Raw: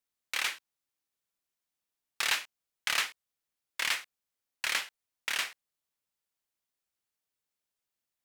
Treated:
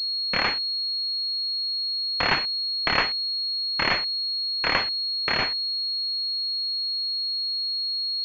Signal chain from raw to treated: bell 1400 Hz -5.5 dB; in parallel at +2.5 dB: limiter -23 dBFS, peak gain reduction 7.5 dB; on the sum: pulse-width modulation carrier 4300 Hz; gain +8.5 dB

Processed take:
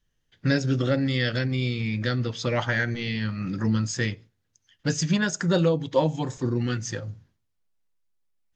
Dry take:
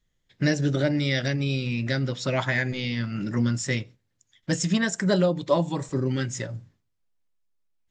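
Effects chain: wide varispeed 0.924×

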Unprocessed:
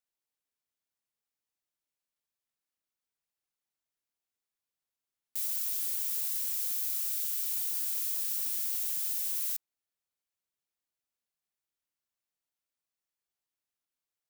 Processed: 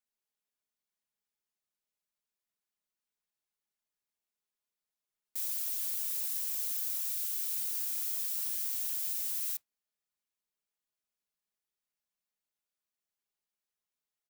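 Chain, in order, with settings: comb 4.8 ms; modulation noise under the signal 26 dB; gain -3.5 dB

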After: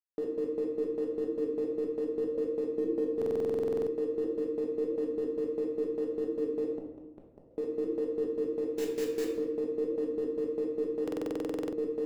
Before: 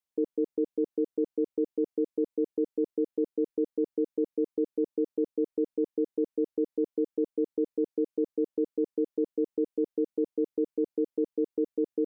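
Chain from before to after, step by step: 8.76–9.3 block floating point 3-bit; gate with hold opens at -26 dBFS; 2.66–3.11 bell 230 Hz +4.5 dB 1.1 oct; crossover distortion -50 dBFS; flange 1.6 Hz, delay 9.1 ms, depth 7.1 ms, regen +78%; 6.75–7.51 flipped gate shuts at -31 dBFS, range -41 dB; shoebox room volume 370 m³, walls mixed, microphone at 1.3 m; stuck buffer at 3.17/11.03, samples 2048, times 14

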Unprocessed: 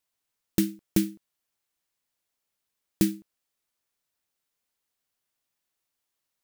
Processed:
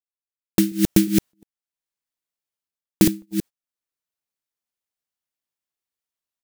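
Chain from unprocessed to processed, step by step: reverse delay 0.179 s, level -3 dB; gate -39 dBFS, range -25 dB; AGC gain up to 16.5 dB; gain -1 dB

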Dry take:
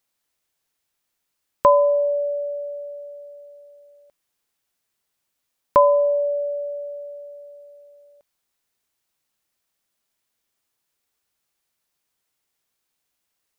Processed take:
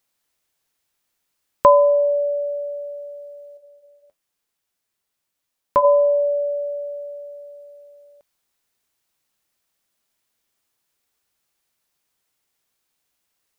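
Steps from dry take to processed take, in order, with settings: 3.57–5.85 flange 1.5 Hz, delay 9.2 ms, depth 2.9 ms, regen -57%; gain +2.5 dB

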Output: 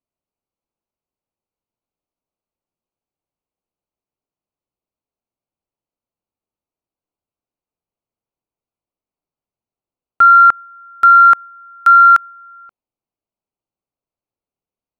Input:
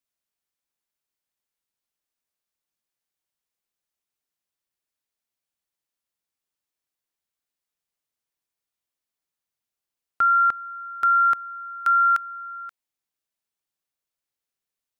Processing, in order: Wiener smoothing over 25 samples; dynamic EQ 1000 Hz, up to +5 dB, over -31 dBFS, Q 0.83; gain +8 dB

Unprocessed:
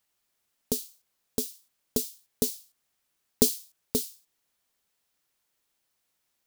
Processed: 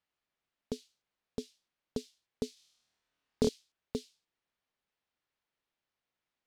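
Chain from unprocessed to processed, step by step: LPF 3400 Hz 12 dB/oct; 2.54–3.49 flutter echo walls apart 4.4 m, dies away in 0.92 s; gain -6 dB

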